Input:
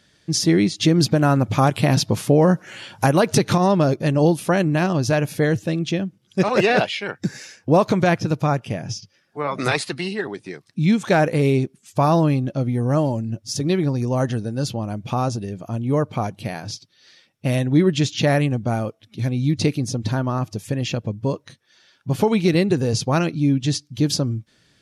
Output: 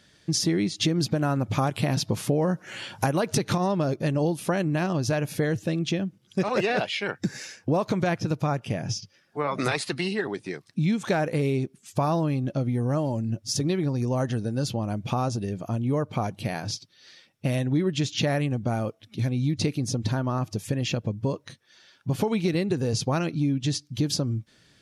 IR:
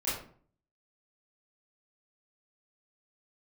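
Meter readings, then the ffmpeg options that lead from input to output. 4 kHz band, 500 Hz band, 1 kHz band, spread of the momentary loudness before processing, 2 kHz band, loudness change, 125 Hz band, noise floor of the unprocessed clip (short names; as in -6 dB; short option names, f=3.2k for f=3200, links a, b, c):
-4.0 dB, -7.0 dB, -7.0 dB, 11 LU, -6.0 dB, -6.5 dB, -5.5 dB, -61 dBFS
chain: -af "acompressor=threshold=-23dB:ratio=3"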